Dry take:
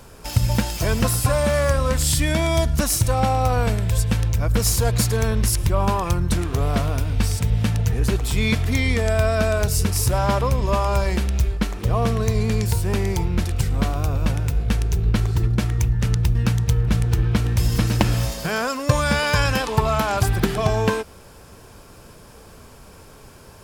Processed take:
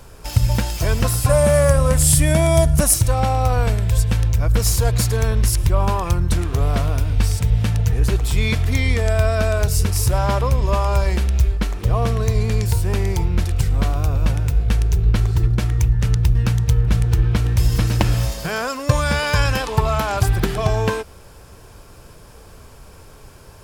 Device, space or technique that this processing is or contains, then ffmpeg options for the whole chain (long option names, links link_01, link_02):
low shelf boost with a cut just above: -filter_complex "[0:a]asettb=1/sr,asplit=3[link_01][link_02][link_03];[link_01]atrim=end=1.294[link_04];[link_02]atrim=start=1.29:end=2.94,asetpts=PTS-STARTPTS,afade=type=in:duration=0.004:curve=qsin,afade=type=out:start_time=1.646:duration=0.004:curve=qsin,equalizer=frequency=160:width_type=o:width=0.67:gain=9,equalizer=frequency=630:width_type=o:width=0.67:gain=6,equalizer=frequency=4000:width_type=o:width=0.67:gain=-4,equalizer=frequency=10000:width_type=o:width=0.67:gain=11[link_05];[link_03]atrim=start=2.936[link_06];[link_04][link_05]acrossfade=duration=0.004:curve1=hsin:curve2=qsin[link_07];[link_07][link_06]acrossfade=duration=0.004:curve1=qsin:curve2=hsin,lowshelf=frequency=92:gain=6,equalizer=frequency=220:width_type=o:width=0.57:gain=-4.5"